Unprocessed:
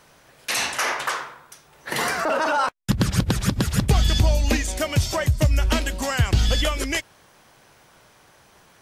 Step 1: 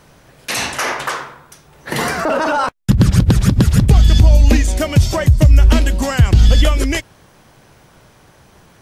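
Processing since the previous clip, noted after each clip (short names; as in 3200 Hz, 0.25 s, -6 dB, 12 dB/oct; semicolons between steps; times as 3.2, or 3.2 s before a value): low shelf 370 Hz +10.5 dB; limiter -4.5 dBFS, peak gain reduction 5 dB; gain +3 dB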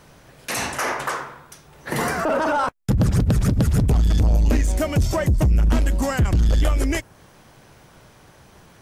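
dynamic EQ 3600 Hz, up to -7 dB, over -38 dBFS, Q 0.93; soft clip -11 dBFS, distortion -10 dB; gain -2 dB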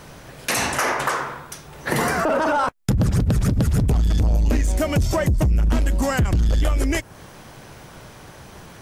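compressor 2.5:1, threshold -28 dBFS, peak gain reduction 9 dB; gain +7.5 dB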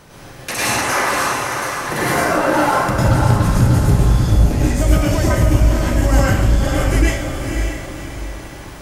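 diffused feedback echo 0.549 s, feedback 44%, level -5 dB; plate-style reverb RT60 0.67 s, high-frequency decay 0.95×, pre-delay 90 ms, DRR -6.5 dB; gain -3 dB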